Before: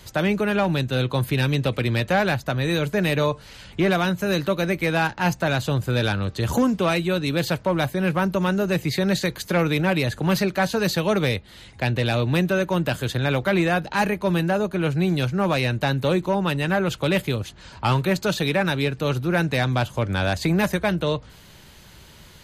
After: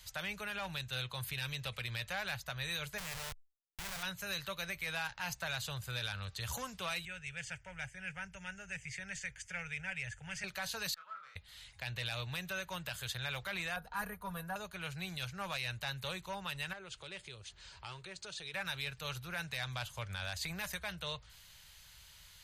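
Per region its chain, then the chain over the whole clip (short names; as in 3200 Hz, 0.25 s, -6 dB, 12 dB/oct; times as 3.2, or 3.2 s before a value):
2.98–4.03 Schmitt trigger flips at -24 dBFS + careless resampling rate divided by 3×, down none, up hold
7.05–10.44 steep low-pass 8200 Hz + bell 620 Hz -10.5 dB 1 oct + fixed phaser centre 1100 Hz, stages 6
10.94–11.36 self-modulated delay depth 0.11 ms + band-pass 1300 Hz, Q 12 + doubler 29 ms -3 dB
13.76–14.56 band shelf 3900 Hz -15 dB 2.3 oct + comb 4.2 ms, depth 69%
16.73–18.54 compressor 2:1, threshold -37 dBFS + elliptic low-pass 9300 Hz + bell 370 Hz +12 dB 0.76 oct
whole clip: passive tone stack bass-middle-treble 10-0-10; limiter -22.5 dBFS; gain -5.5 dB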